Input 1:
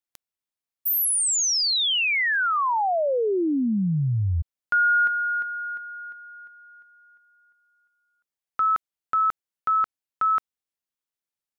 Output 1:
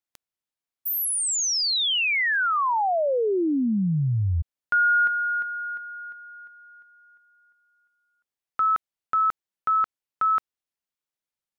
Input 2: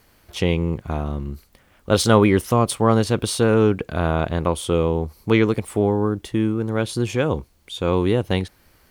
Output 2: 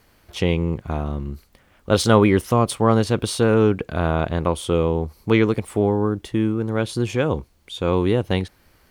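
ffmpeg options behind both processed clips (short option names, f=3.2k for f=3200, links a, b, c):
-af "highshelf=f=6.6k:g=-4"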